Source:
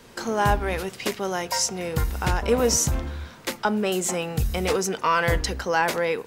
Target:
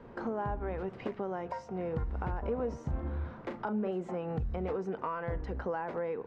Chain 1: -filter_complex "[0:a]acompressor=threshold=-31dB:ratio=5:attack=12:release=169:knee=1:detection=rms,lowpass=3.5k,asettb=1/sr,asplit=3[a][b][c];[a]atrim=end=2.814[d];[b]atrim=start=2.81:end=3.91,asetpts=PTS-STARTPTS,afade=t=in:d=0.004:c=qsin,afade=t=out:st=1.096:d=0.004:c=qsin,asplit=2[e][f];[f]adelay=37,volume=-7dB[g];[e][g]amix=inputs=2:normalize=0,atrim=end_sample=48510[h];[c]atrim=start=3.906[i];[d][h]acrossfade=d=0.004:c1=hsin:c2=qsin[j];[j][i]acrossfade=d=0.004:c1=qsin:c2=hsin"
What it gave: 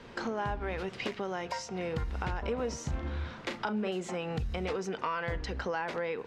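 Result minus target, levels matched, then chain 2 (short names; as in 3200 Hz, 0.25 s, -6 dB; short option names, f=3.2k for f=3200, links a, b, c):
4000 Hz band +15.5 dB
-filter_complex "[0:a]acompressor=threshold=-31dB:ratio=5:attack=12:release=169:knee=1:detection=rms,lowpass=1.1k,asettb=1/sr,asplit=3[a][b][c];[a]atrim=end=2.814[d];[b]atrim=start=2.81:end=3.91,asetpts=PTS-STARTPTS,afade=t=in:d=0.004:c=qsin,afade=t=out:st=1.096:d=0.004:c=qsin,asplit=2[e][f];[f]adelay=37,volume=-7dB[g];[e][g]amix=inputs=2:normalize=0,atrim=end_sample=48510[h];[c]atrim=start=3.906[i];[d][h]acrossfade=d=0.004:c1=hsin:c2=qsin[j];[j][i]acrossfade=d=0.004:c1=qsin:c2=hsin"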